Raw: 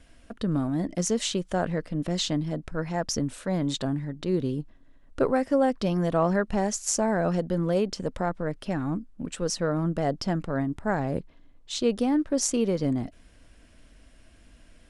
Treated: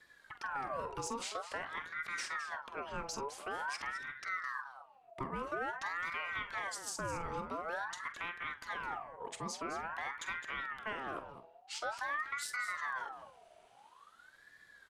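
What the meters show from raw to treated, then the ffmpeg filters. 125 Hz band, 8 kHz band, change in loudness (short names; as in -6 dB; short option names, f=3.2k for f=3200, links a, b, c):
-24.5 dB, -14.0 dB, -12.5 dB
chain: -filter_complex "[0:a]equalizer=f=2.2k:w=4.3:g=7,bandreject=f=85.12:t=h:w=4,bandreject=f=170.24:t=h:w=4,bandreject=f=255.36:t=h:w=4,bandreject=f=340.48:t=h:w=4,bandreject=f=425.6:t=h:w=4,bandreject=f=510.72:t=h:w=4,bandreject=f=595.84:t=h:w=4,bandreject=f=680.96:t=h:w=4,bandreject=f=766.08:t=h:w=4,bandreject=f=851.2:t=h:w=4,bandreject=f=936.32:t=h:w=4,bandreject=f=1.02144k:t=h:w=4,bandreject=f=1.10656k:t=h:w=4,bandreject=f=1.19168k:t=h:w=4,bandreject=f=1.2768k:t=h:w=4,bandreject=f=1.36192k:t=h:w=4,bandreject=f=1.44704k:t=h:w=4,bandreject=f=1.53216k:t=h:w=4,bandreject=f=1.61728k:t=h:w=4,bandreject=f=1.7024k:t=h:w=4,bandreject=f=1.78752k:t=h:w=4,bandreject=f=1.87264k:t=h:w=4,acrossover=split=210|400|3400[a][b][c][d];[a]alimiter=level_in=12.5dB:limit=-24dB:level=0:latency=1,volume=-12.5dB[e];[e][b][c][d]amix=inputs=4:normalize=0,acrossover=split=240[f][g];[g]acompressor=threshold=-29dB:ratio=6[h];[f][h]amix=inputs=2:normalize=0,asoftclip=type=tanh:threshold=-18.5dB,asplit=2[i][j];[j]adelay=46,volume=-13dB[k];[i][k]amix=inputs=2:normalize=0,aecho=1:1:212:0.266,aeval=exprs='val(0)*sin(2*PI*1200*n/s+1200*0.45/0.48*sin(2*PI*0.48*n/s))':c=same,volume=-6.5dB"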